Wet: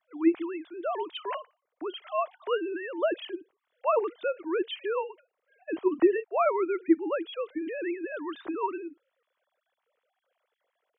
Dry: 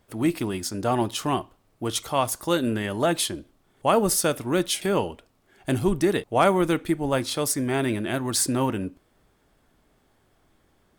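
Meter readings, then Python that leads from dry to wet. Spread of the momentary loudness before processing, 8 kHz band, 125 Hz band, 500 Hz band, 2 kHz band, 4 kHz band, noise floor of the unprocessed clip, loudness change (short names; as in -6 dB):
8 LU, under -40 dB, under -40 dB, -3.0 dB, -6.5 dB, -12.0 dB, -65 dBFS, -5.5 dB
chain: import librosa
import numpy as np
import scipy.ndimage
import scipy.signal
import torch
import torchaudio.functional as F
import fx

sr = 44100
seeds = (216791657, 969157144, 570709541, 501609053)

y = fx.sine_speech(x, sr)
y = fx.notch(y, sr, hz=840.0, q=12.0)
y = F.gain(torch.from_numpy(y), -5.0).numpy()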